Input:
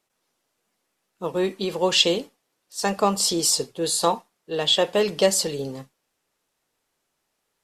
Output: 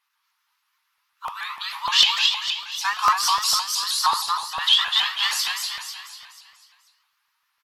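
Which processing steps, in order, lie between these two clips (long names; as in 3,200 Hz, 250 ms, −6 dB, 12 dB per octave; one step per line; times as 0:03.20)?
Butterworth high-pass 940 Hz 72 dB per octave
parametric band 8,200 Hz −14 dB 0.71 octaves
harmonic generator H 5 −40 dB, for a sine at −4.5 dBFS
repeating echo 246 ms, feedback 48%, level −4 dB
rectangular room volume 60 cubic metres, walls mixed, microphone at 0.76 metres
regular buffer underruns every 0.15 s, samples 64, repeat, from 0:00.83
pitch modulation by a square or saw wave saw up 6.4 Hz, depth 160 cents
level +2 dB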